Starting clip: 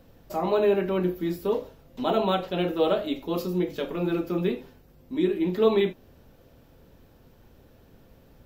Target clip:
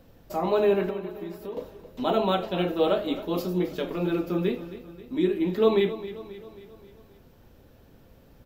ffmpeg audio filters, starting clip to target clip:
-filter_complex "[0:a]asettb=1/sr,asplit=3[s0][s1][s2];[s0]atrim=end=0.904[s3];[s1]atrim=start=0.9:end=1.57,asetpts=PTS-STARTPTS,afade=t=in:d=0.004:c=qsin,afade=t=out:st=0.666:d=0.004:c=qsin,acompressor=threshold=0.0141:ratio=4[s4];[s2]atrim=start=1.566[s5];[s3][s4]acrossfade=d=0.004:c1=hsin:c2=qsin[s6];[s6][s5]acrossfade=d=0.004:c1=qsin:c2=hsin,aecho=1:1:267|534|801|1068|1335:0.188|0.0998|0.0529|0.028|0.0149"

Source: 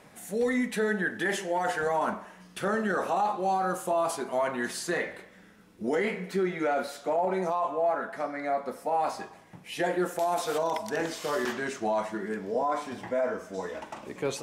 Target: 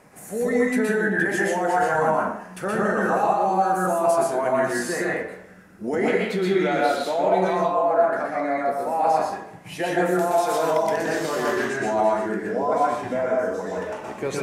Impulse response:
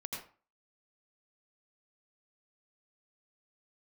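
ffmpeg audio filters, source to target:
-filter_complex "[0:a]asetnsamples=n=441:p=0,asendcmd='6.08 equalizer g 7.5;7.55 equalizer g -4',equalizer=f=3500:t=o:w=0.69:g=-9.5[s0];[1:a]atrim=start_sample=2205,asetrate=29547,aresample=44100[s1];[s0][s1]afir=irnorm=-1:irlink=0,volume=1.68"

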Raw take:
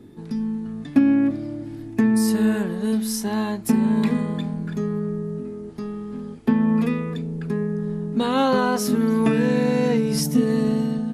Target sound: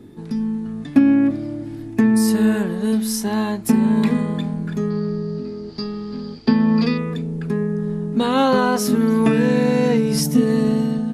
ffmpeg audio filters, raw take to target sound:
-filter_complex "[0:a]asettb=1/sr,asplit=3[s0][s1][s2];[s0]atrim=end=4.904[s3];[s1]atrim=start=4.9:end=6.98,asetpts=PTS-STARTPTS,afade=t=in:d=0.004:c=qsin,afade=t=out:st=2.076:d=0.004:c=qsin,lowpass=f=4700:t=q:w=15[s4];[s2]atrim=start=6.976[s5];[s3][s4]acrossfade=d=0.004:c1=hsin:c2=qsin[s6];[s6][s5]acrossfade=d=0.004:c1=qsin:c2=hsin,volume=1.41"

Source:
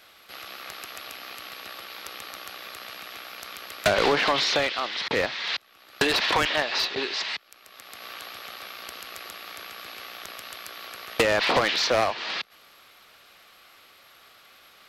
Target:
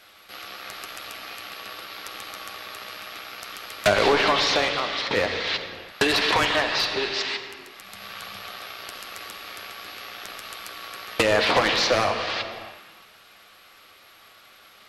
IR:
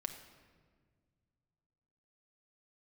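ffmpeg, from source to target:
-filter_complex "[0:a]asettb=1/sr,asplit=3[s0][s1][s2];[s0]atrim=end=7.814[s3];[s1]atrim=start=7.81:end=8.43,asetpts=PTS-STARTPTS,afade=t=in:d=0.004:c=qsin,afade=t=out:st=0.616:d=0.004:c=qsin,lowshelf=f=230:t=q:w=3:g=6[s4];[s2]atrim=start=8.426[s5];[s3][s4]acrossfade=d=0.004:c1=hsin:c2=qsin[s6];[s6][s5]acrossfade=d=0.004:c1=qsin:c2=hsin[s7];[1:a]atrim=start_sample=2205,afade=t=out:st=0.43:d=0.01,atrim=end_sample=19404,asetrate=24696,aresample=44100[s8];[s7][s8]afir=irnorm=-1:irlink=0"

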